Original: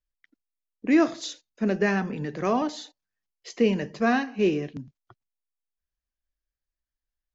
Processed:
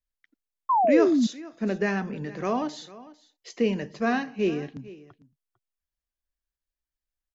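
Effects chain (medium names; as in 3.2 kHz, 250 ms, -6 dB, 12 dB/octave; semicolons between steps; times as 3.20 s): delay 450 ms -19 dB; painted sound fall, 0.69–1.27 s, 210–1100 Hz -18 dBFS; trim -2.5 dB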